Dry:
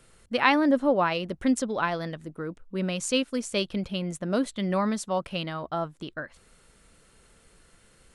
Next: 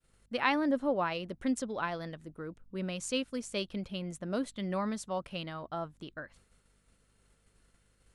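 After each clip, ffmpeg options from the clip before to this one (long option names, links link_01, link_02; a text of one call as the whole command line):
ffmpeg -i in.wav -af "aeval=exprs='val(0)+0.00126*(sin(2*PI*50*n/s)+sin(2*PI*2*50*n/s)/2+sin(2*PI*3*50*n/s)/3+sin(2*PI*4*50*n/s)/4+sin(2*PI*5*50*n/s)/5)':channel_layout=same,agate=range=-33dB:threshold=-50dB:ratio=3:detection=peak,volume=-7.5dB" out.wav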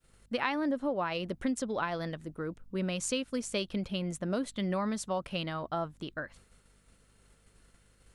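ffmpeg -i in.wav -af "acompressor=threshold=-33dB:ratio=5,volume=5dB" out.wav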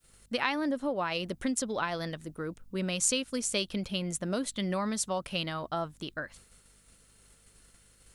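ffmpeg -i in.wav -af "highshelf=frequency=3600:gain=10.5" out.wav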